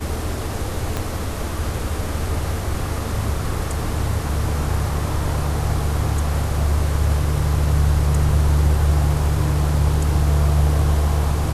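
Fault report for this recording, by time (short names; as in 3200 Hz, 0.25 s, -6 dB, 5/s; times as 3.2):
0.97 pop -10 dBFS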